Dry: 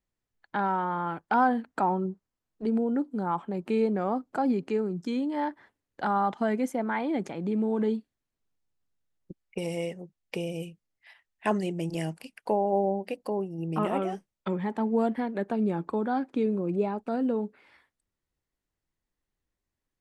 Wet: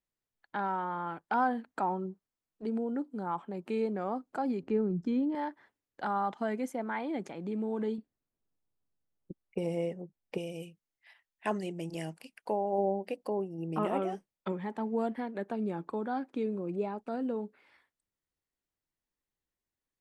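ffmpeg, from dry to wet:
-filter_complex "[0:a]asettb=1/sr,asplit=3[s0][s1][s2];[s0]atrim=end=4.634[s3];[s1]atrim=start=4.63:end=5.35,asetpts=PTS-STARTPTS,afade=t=in:d=0.004:c=qsin,afade=t=out:st=0.716:d=0.004:c=qsin,aemphasis=mode=reproduction:type=riaa[s4];[s2]atrim=start=5.346[s5];[s3][s4]acrossfade=d=0.004:c1=hsin:c2=qsin[s6];[s6][s5]acrossfade=d=0.004:c1=qsin:c2=hsin,asettb=1/sr,asplit=3[s7][s8][s9];[s7]atrim=end=7.984[s10];[s8]atrim=start=7.98:end=10.38,asetpts=PTS-STARTPTS,afade=t=in:d=0.004:c=qsin,afade=t=out:st=2.396:d=0.004:c=qsin,tiltshelf=f=1300:g=7[s11];[s9]atrim=start=10.376[s12];[s10][s11]acrossfade=d=0.004:c1=hsin:c2=qsin[s13];[s13][s12]acrossfade=d=0.004:c1=qsin:c2=hsin,asettb=1/sr,asplit=3[s14][s15][s16];[s14]atrim=end=12.784[s17];[s15]atrim=start=12.78:end=14.52,asetpts=PTS-STARTPTS,afade=t=in:d=0.004:c=qsin,afade=t=out:st=1.736:d=0.004:c=qsin,equalizer=f=370:w=0.41:g=3.5[s18];[s16]atrim=start=14.516[s19];[s17][s18]acrossfade=d=0.004:c1=hsin:c2=qsin[s20];[s20][s19]acrossfade=d=0.004:c1=qsin:c2=hsin,lowshelf=f=150:g=-6.5,volume=0.562"

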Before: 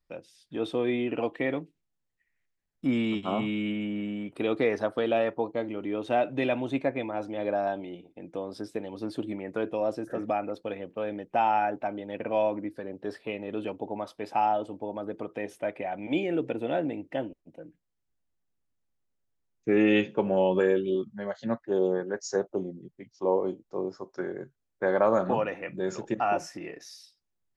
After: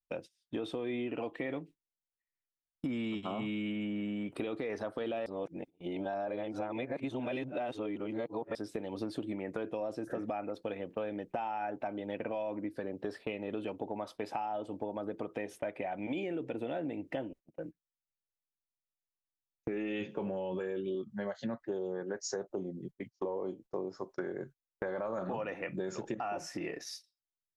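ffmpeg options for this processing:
-filter_complex "[0:a]asplit=3[s0][s1][s2];[s0]atrim=end=5.262[s3];[s1]atrim=start=5.258:end=8.552,asetpts=PTS-STARTPTS,areverse[s4];[s2]atrim=start=8.548[s5];[s3][s4]acrossfade=d=0.004:c1=hsin:c2=hsin[s6];[s6][s5]acrossfade=d=0.004:c1=hsin:c2=hsin,agate=range=0.0631:threshold=0.00447:ratio=16:detection=peak,alimiter=limit=0.0841:level=0:latency=1:release=10,acompressor=threshold=0.0126:ratio=6,volume=1.58"

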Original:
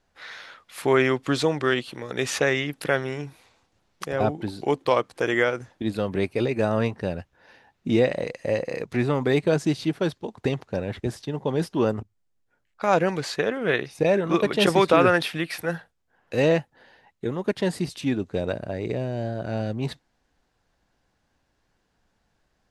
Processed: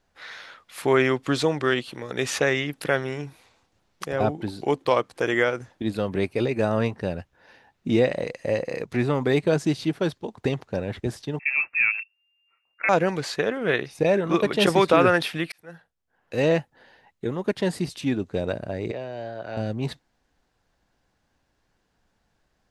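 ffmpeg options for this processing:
-filter_complex "[0:a]asettb=1/sr,asplit=3[s0][s1][s2];[s0]atrim=end=11.394[s3];[s1]atrim=start=11.39:end=12.89,asetpts=PTS-STARTPTS,afade=t=in:d=0.004:c=qsin,afade=t=out:st=1.496:d=0.004:c=qsin,lowpass=f=2400:t=q:w=0.5098,lowpass=f=2400:t=q:w=0.6013,lowpass=f=2400:t=q:w=0.9,lowpass=f=2400:t=q:w=2.563,afreqshift=-2800[s4];[s2]atrim=start=12.886[s5];[s3][s4]acrossfade=d=0.004:c1=hsin:c2=qsin[s6];[s6][s5]acrossfade=d=0.004:c1=qsin:c2=hsin,asettb=1/sr,asplit=3[s7][s8][s9];[s7]atrim=end=18.914[s10];[s8]atrim=start=18.91:end=19.57,asetpts=PTS-STARTPTS,afade=t=in:d=0.004:c=qsin,afade=t=out:st=0.656:d=0.004:c=qsin,acrossover=split=450 5500:gain=0.224 1 0.158[s11][s12][s13];[s11][s12][s13]amix=inputs=3:normalize=0[s14];[s9]atrim=start=19.566[s15];[s10][s14]acrossfade=d=0.004:c1=hsin:c2=qsin[s16];[s16][s15]acrossfade=d=0.004:c1=qsin:c2=hsin,asplit=2[s17][s18];[s17]atrim=end=15.52,asetpts=PTS-STARTPTS,afade=t=out:st=15.516:d=0.004:c=hsin[s19];[s18]atrim=start=15.52,asetpts=PTS-STARTPTS,afade=t=in:d=1.06[s20];[s19][s20]concat=n=2:v=0:a=1"

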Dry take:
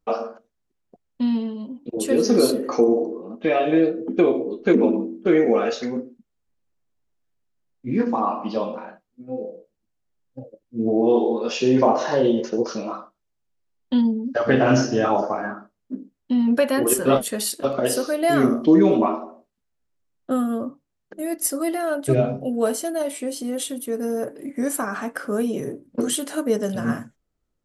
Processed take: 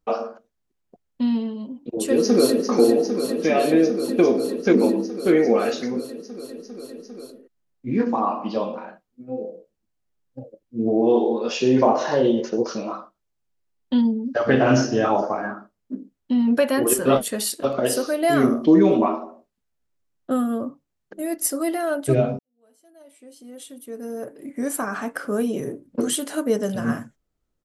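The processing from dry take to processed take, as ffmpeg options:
-filter_complex "[0:a]asplit=2[s0][s1];[s1]afade=t=in:st=2.04:d=0.01,afade=t=out:st=2.67:d=0.01,aecho=0:1:400|800|1200|1600|2000|2400|2800|3200|3600|4000|4400|4800:0.473151|0.402179|0.341852|0.290574|0.246988|0.20994|0.178449|0.151681|0.128929|0.10959|0.0931514|0.0791787[s2];[s0][s2]amix=inputs=2:normalize=0,asplit=2[s3][s4];[s3]atrim=end=22.39,asetpts=PTS-STARTPTS,afade=t=out:st=22.386:d=0.004:c=hsin[s5];[s4]atrim=start=22.39,asetpts=PTS-STARTPTS,afade=t=in:d=2.53:c=qua[s6];[s5][s6]concat=n=2:v=0:a=1"

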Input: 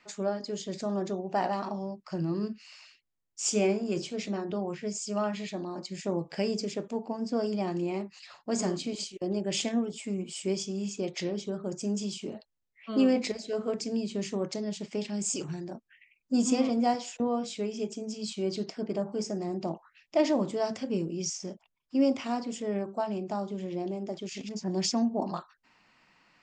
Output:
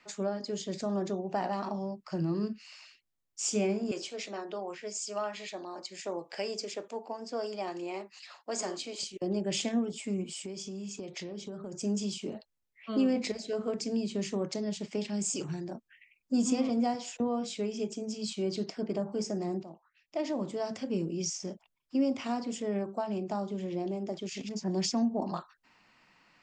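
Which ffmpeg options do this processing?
-filter_complex "[0:a]asettb=1/sr,asplit=3[s0][s1][s2];[s0]atrim=end=3.914[s3];[s1]atrim=start=3.91:end=9.03,asetpts=PTS-STARTPTS,afade=t=in:d=0.004:c=qsin,afade=t=out:st=5.116:d=0.004:c=qsin,highpass=480[s4];[s2]atrim=start=9.026[s5];[s3][s4]acrossfade=d=0.004:c1=hsin:c2=qsin[s6];[s6][s5]acrossfade=d=0.004:c1=qsin:c2=hsin,asettb=1/sr,asplit=3[s7][s8][s9];[s7]atrim=end=10.314[s10];[s8]atrim=start=10.31:end=11.75,asetpts=PTS-STARTPTS,afade=t=in:d=0.004:c=qsin,afade=t=out:st=1.436:d=0.004:c=qsin,acompressor=threshold=0.0158:ratio=8:attack=3.2:release=140:knee=1:detection=peak[s11];[s9]atrim=start=11.746[s12];[s10][s11]acrossfade=d=0.004:c1=hsin:c2=qsin[s13];[s13][s12]acrossfade=d=0.004:c1=qsin:c2=hsin,asplit=2[s14][s15];[s14]atrim=end=19.63,asetpts=PTS-STARTPTS,afade=t=out:st=19.626:d=0.004:c=hsin:silence=0.158489[s16];[s15]atrim=start=19.63,asetpts=PTS-STARTPTS,afade=t=in:d=1.5:silence=0.158489[s17];[s16][s17]concat=n=2:v=0:a=1,acrossover=split=220[s18][s19];[s19]acompressor=threshold=0.0316:ratio=2.5[s20];[s18][s20]amix=inputs=2:normalize=0"

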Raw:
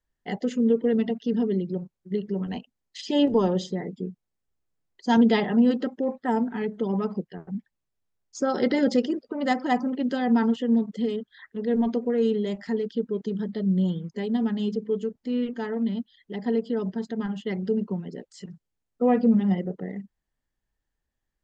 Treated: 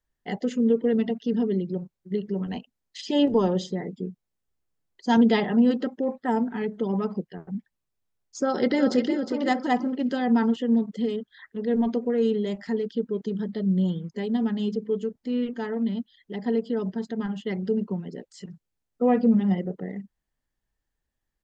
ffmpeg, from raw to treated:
-filter_complex "[0:a]asplit=2[s0][s1];[s1]afade=t=in:st=8.43:d=0.01,afade=t=out:st=9.13:d=0.01,aecho=0:1:360|720|1080|1440:0.421697|0.126509|0.0379527|0.0113858[s2];[s0][s2]amix=inputs=2:normalize=0"

